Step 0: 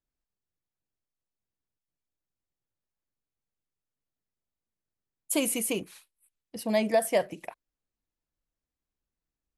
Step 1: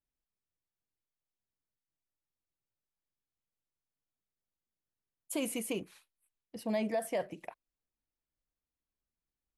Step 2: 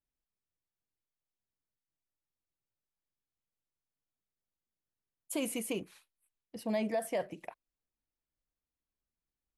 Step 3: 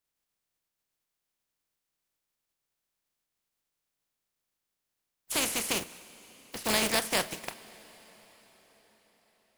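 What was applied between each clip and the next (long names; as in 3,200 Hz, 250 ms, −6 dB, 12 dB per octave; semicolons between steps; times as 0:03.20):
high-shelf EQ 4,400 Hz −7.5 dB; brickwall limiter −20 dBFS, peak gain reduction 6.5 dB; level −4.5 dB
no processing that can be heard
compressing power law on the bin magnitudes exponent 0.31; convolution reverb RT60 5.3 s, pre-delay 6 ms, DRR 17 dB; level +5.5 dB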